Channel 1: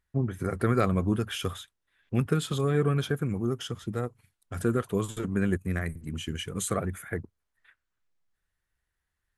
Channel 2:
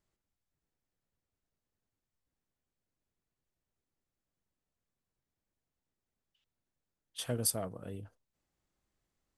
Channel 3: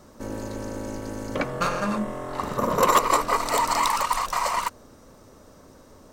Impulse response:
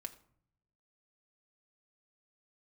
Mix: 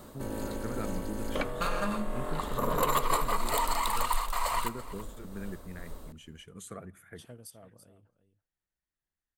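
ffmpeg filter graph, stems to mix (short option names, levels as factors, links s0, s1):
-filter_complex "[0:a]volume=0.141,asplit=2[s0][s1];[s1]volume=0.596[s2];[1:a]volume=0.224,asplit=2[s3][s4];[s4]volume=0.158[s5];[2:a]asubboost=boost=7.5:cutoff=53,aexciter=amount=1:drive=5.7:freq=3100,volume=1.12,asplit=3[s6][s7][s8];[s7]volume=0.178[s9];[s8]volume=0.0668[s10];[s3][s6]amix=inputs=2:normalize=0,tremolo=f=2.2:d=0.43,acompressor=threshold=0.0158:ratio=2,volume=1[s11];[3:a]atrim=start_sample=2205[s12];[s2][s9]amix=inputs=2:normalize=0[s13];[s13][s12]afir=irnorm=-1:irlink=0[s14];[s5][s10]amix=inputs=2:normalize=0,aecho=0:1:333:1[s15];[s0][s11][s14][s15]amix=inputs=4:normalize=0"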